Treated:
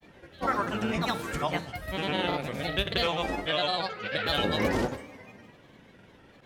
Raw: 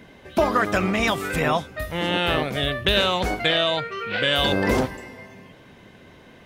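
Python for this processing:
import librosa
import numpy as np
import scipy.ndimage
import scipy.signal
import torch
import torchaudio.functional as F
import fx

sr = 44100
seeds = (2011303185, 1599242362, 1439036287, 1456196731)

y = fx.granulator(x, sr, seeds[0], grain_ms=100.0, per_s=20.0, spray_ms=100.0, spread_st=3)
y = fx.rev_fdn(y, sr, rt60_s=0.7, lf_ratio=0.9, hf_ratio=0.85, size_ms=11.0, drr_db=11.5)
y = y * librosa.db_to_amplitude(-5.5)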